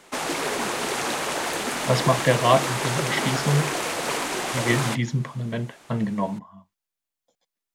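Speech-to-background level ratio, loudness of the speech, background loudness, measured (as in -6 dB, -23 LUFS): 1.0 dB, -25.0 LUFS, -26.0 LUFS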